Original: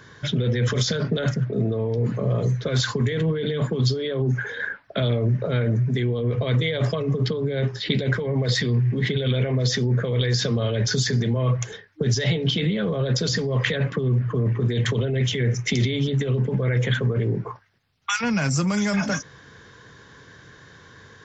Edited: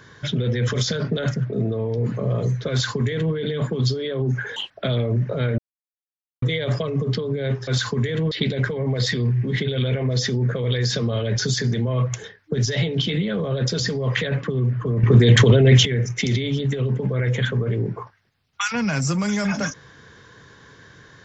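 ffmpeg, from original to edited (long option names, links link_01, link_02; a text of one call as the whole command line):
ffmpeg -i in.wav -filter_complex "[0:a]asplit=9[link_01][link_02][link_03][link_04][link_05][link_06][link_07][link_08][link_09];[link_01]atrim=end=4.564[link_10];[link_02]atrim=start=4.56:end=4.83,asetpts=PTS-STARTPTS,asetrate=83349,aresample=44100[link_11];[link_03]atrim=start=4.826:end=5.71,asetpts=PTS-STARTPTS,afade=type=out:start_time=0.88:duration=0.004:curve=hsin[link_12];[link_04]atrim=start=5.71:end=6.55,asetpts=PTS-STARTPTS,volume=0[link_13];[link_05]atrim=start=6.55:end=7.802,asetpts=PTS-STARTPTS,afade=type=in:duration=0.004:curve=hsin[link_14];[link_06]atrim=start=2.698:end=3.342[link_15];[link_07]atrim=start=7.798:end=14.522[link_16];[link_08]atrim=start=14.518:end=15.342,asetpts=PTS-STARTPTS,volume=10dB[link_17];[link_09]atrim=start=15.338[link_18];[link_10][link_11]acrossfade=duration=0.004:curve1=hsin:curve2=hsin[link_19];[link_12][link_13][link_14]concat=n=3:v=0:a=1[link_20];[link_19][link_20]acrossfade=duration=0.004:curve1=hsin:curve2=hsin[link_21];[link_21][link_15]acrossfade=duration=0.004:curve1=hsin:curve2=hsin[link_22];[link_22][link_16]acrossfade=duration=0.004:curve1=hsin:curve2=hsin[link_23];[link_23][link_17]acrossfade=duration=0.004:curve1=hsin:curve2=hsin[link_24];[link_24][link_18]acrossfade=duration=0.004:curve1=hsin:curve2=hsin" out.wav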